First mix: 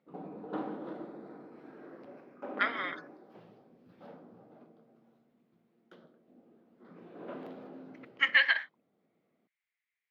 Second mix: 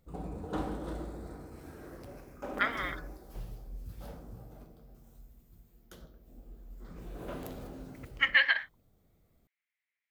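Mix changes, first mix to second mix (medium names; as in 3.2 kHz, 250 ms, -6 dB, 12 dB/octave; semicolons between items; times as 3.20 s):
background: remove distance through air 350 m; master: remove high-pass 200 Hz 24 dB/octave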